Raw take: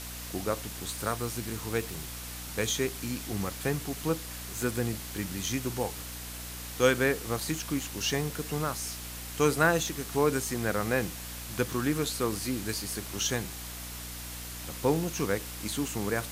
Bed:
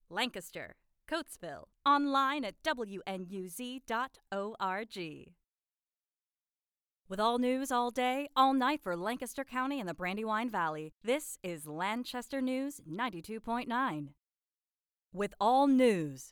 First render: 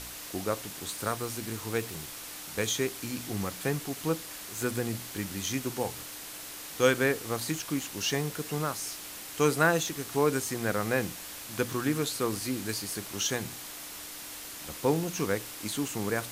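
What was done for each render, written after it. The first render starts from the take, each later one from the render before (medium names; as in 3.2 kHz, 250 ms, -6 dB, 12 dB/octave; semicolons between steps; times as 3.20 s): de-hum 60 Hz, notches 4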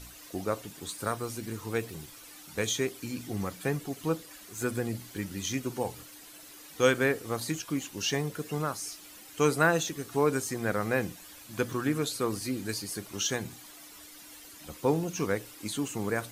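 noise reduction 11 dB, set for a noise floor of -43 dBFS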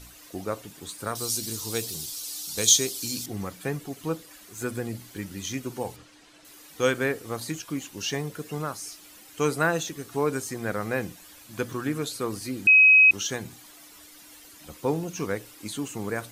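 1.15–3.26 s: resonant high shelf 3 kHz +13.5 dB, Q 1.5; 5.96–6.45 s: distance through air 86 m; 12.67–13.11 s: bleep 2.54 kHz -11.5 dBFS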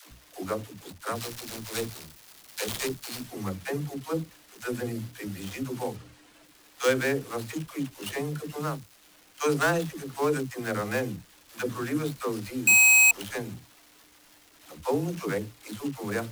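dead-time distortion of 0.1 ms; phase dispersion lows, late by 117 ms, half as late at 300 Hz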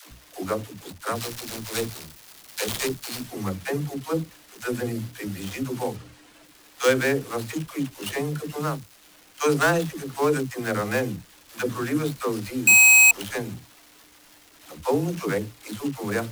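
trim +4 dB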